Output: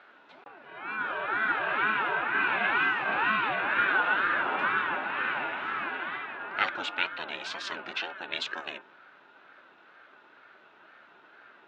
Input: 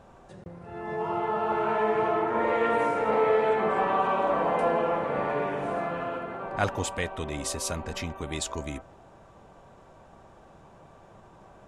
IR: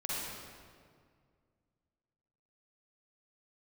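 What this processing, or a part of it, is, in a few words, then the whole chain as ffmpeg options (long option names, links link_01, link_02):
voice changer toy: -af "aeval=exprs='val(0)*sin(2*PI*450*n/s+450*0.45/2.1*sin(2*PI*2.1*n/s))':channel_layout=same,highpass=430,equalizer=frequency=490:width_type=q:width=4:gain=-8,equalizer=frequency=740:width_type=q:width=4:gain=-4,equalizer=frequency=1100:width_type=q:width=4:gain=-5,equalizer=frequency=1500:width_type=q:width=4:gain=9,equalizer=frequency=2600:width_type=q:width=4:gain=10,equalizer=frequency=3700:width_type=q:width=4:gain=7,lowpass=frequency=4500:width=0.5412,lowpass=frequency=4500:width=1.3066,volume=1dB"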